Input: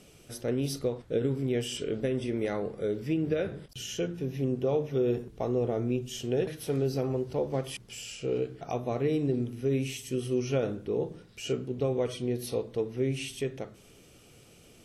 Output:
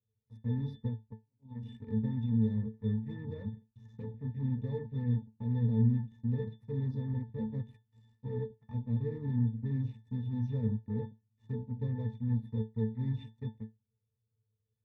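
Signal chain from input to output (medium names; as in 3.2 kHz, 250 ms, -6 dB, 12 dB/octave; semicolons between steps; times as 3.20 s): touch-sensitive phaser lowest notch 220 Hz, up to 3.8 kHz, full sweep at -23.5 dBFS; dynamic bell 440 Hz, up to -6 dB, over -41 dBFS, Q 0.75; 0.87–1.63 s: slow attack 775 ms; 12.65–13.24 s: small resonant body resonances 1.3/2/3.6 kHz, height 13 dB, ringing for 20 ms; Chebyshev shaper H 3 -43 dB, 5 -38 dB, 7 -16 dB, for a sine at -26 dBFS; resonant low shelf 290 Hz +9.5 dB, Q 1.5; pitch-class resonator A, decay 0.19 s; trim +4 dB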